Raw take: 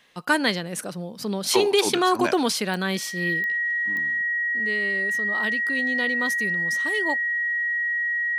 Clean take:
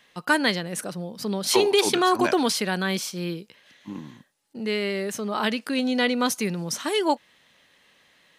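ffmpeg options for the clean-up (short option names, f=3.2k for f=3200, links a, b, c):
-af "adeclick=t=4,bandreject=f=1.9k:w=30,asetnsamples=n=441:p=0,asendcmd='3.57 volume volume 6.5dB',volume=0dB"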